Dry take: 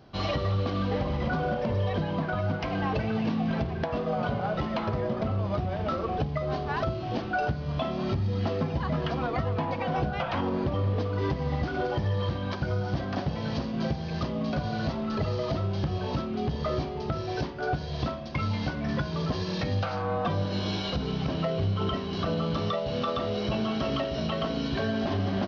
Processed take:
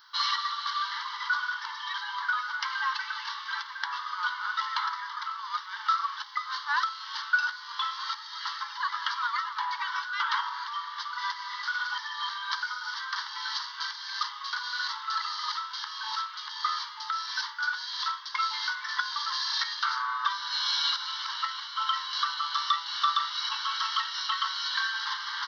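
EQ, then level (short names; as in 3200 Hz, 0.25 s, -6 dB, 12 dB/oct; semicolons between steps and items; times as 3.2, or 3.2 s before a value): brick-wall FIR high-pass 840 Hz; high shelf 5200 Hz +9 dB; fixed phaser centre 2500 Hz, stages 6; +8.0 dB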